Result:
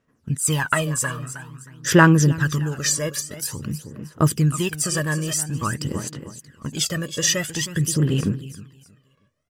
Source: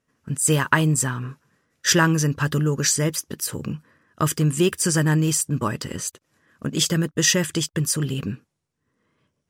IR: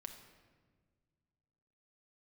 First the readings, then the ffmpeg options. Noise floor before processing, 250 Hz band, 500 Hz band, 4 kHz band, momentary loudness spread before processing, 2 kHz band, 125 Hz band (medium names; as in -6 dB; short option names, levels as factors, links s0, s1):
-77 dBFS, +0.5 dB, 0.0 dB, -1.5 dB, 13 LU, +1.0 dB, +1.0 dB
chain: -af "aecho=1:1:315|630|945:0.251|0.0854|0.029,aphaser=in_gain=1:out_gain=1:delay=1.8:decay=0.66:speed=0.49:type=sinusoidal,volume=0.668"